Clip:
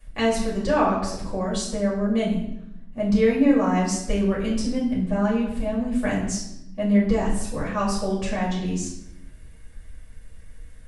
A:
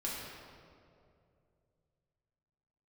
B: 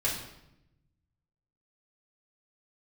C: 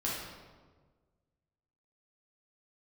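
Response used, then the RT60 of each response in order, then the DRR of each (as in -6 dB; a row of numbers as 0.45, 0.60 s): B; 2.5, 0.85, 1.5 s; -6.0, -7.0, -6.5 dB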